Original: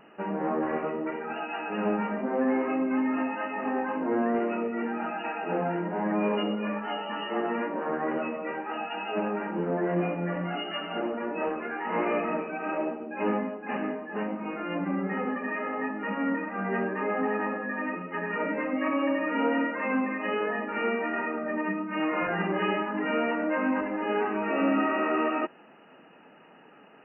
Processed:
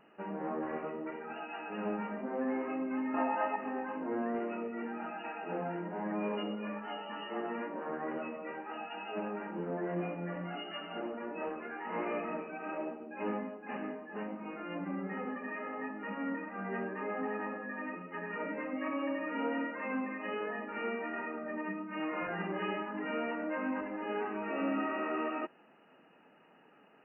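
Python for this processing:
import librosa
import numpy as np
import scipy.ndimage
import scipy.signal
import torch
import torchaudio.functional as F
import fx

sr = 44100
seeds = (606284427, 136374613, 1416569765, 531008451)

y = fx.peak_eq(x, sr, hz=770.0, db=12.0, octaves=1.7, at=(3.14, 3.56))
y = y * librosa.db_to_amplitude(-8.5)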